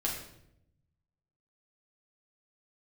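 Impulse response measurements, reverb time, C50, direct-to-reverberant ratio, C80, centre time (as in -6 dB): 0.75 s, 4.5 dB, -5.0 dB, 7.0 dB, 39 ms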